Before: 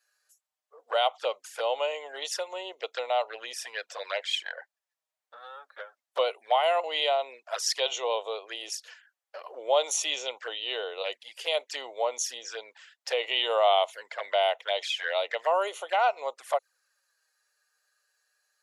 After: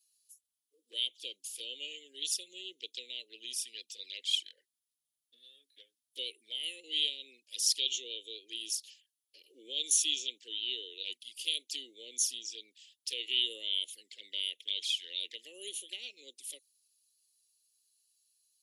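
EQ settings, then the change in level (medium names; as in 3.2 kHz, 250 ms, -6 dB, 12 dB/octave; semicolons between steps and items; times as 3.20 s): elliptic band-stop 310–3100 Hz, stop band 50 dB; peaking EQ 10 kHz +12.5 dB 0.26 oct; 0.0 dB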